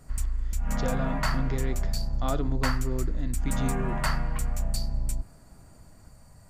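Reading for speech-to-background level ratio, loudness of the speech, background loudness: -3.0 dB, -34.5 LUFS, -31.5 LUFS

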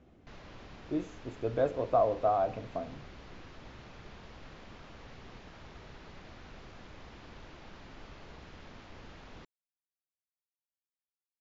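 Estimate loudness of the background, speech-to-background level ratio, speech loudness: -51.5 LUFS, 20.0 dB, -31.5 LUFS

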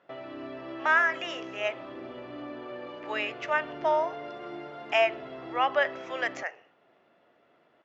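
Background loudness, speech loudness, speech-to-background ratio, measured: -41.0 LUFS, -28.5 LUFS, 12.5 dB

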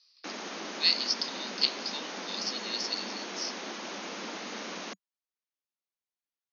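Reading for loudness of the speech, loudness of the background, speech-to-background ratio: -31.0 LUFS, -38.5 LUFS, 7.5 dB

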